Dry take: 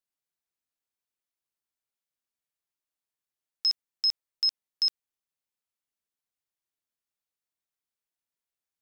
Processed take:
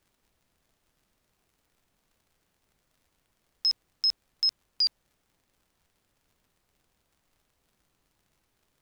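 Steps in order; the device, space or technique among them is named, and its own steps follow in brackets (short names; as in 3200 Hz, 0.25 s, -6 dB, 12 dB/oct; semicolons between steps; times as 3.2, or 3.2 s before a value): warped LP (record warp 33 1/3 rpm, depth 160 cents; crackle; pink noise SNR 37 dB)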